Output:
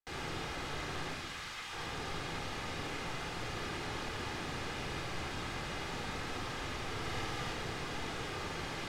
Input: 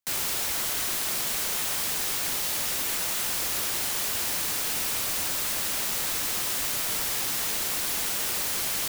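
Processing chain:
0:01.13–0:01.73: high-pass filter 1,200 Hz 12 dB per octave
soft clipping −25 dBFS, distortion −15 dB
head-to-tape spacing loss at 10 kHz 27 dB
0:06.98–0:07.53: flutter between parallel walls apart 9.7 metres, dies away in 0.7 s
convolution reverb RT60 1.1 s, pre-delay 3 ms, DRR 2 dB
level −2.5 dB

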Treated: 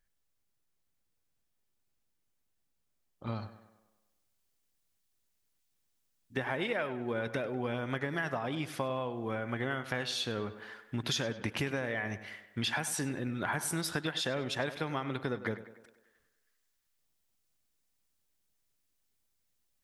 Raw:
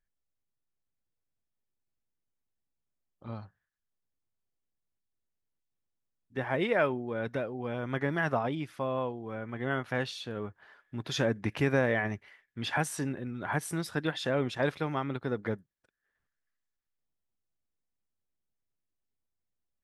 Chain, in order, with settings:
high-shelf EQ 2,200 Hz +3 dB, from 0:03.27 +9 dB
downward compressor 12 to 1, threshold −35 dBFS, peak gain reduction 15.5 dB
tape delay 99 ms, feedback 58%, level −12.5 dB, low-pass 3,800 Hz
level +5 dB

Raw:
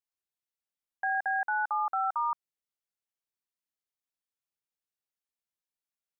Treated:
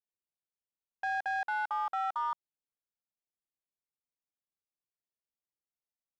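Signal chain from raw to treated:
adaptive Wiener filter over 25 samples
level −2.5 dB

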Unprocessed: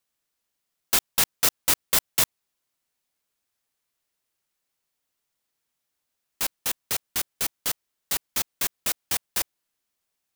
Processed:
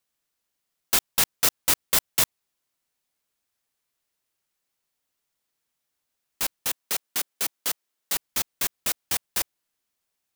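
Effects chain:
0:06.69–0:08.15: high-pass filter 200 Hz 12 dB per octave

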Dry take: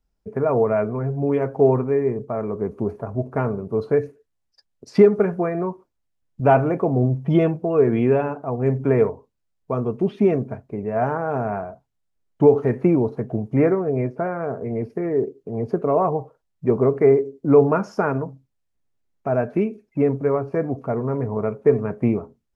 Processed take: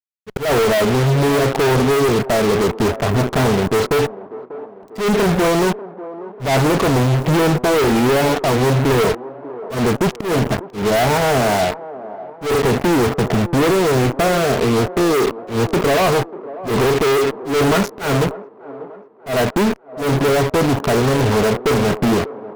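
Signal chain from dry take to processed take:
fuzz pedal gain 42 dB, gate −35 dBFS
floating-point word with a short mantissa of 2 bits
volume swells 143 ms
on a send: delay with a band-pass on its return 592 ms, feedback 48%, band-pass 550 Hz, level −14 dB

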